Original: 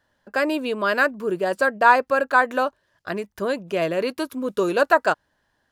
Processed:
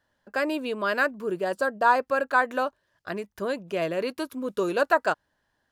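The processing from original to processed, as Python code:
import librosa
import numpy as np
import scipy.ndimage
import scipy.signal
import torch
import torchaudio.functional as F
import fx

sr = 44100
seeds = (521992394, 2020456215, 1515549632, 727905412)

y = fx.peak_eq(x, sr, hz=2200.0, db=-10.0, octaves=0.58, at=(1.53, 1.96))
y = F.gain(torch.from_numpy(y), -4.5).numpy()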